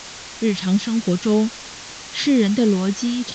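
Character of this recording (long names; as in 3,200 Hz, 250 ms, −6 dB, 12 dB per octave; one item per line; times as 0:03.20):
phaser sweep stages 2, 3.1 Hz, lowest notch 460–1,100 Hz
a quantiser's noise floor 6 bits, dither triangular
A-law companding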